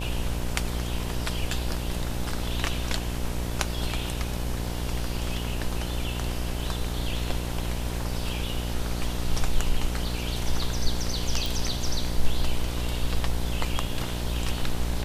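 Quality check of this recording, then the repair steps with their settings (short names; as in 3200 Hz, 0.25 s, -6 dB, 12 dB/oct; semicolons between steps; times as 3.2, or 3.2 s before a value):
buzz 60 Hz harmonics 17 -31 dBFS
11.46 pop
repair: de-click; de-hum 60 Hz, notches 17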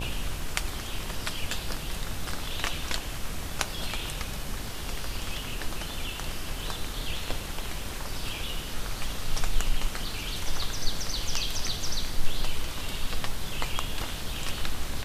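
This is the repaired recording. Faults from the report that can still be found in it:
none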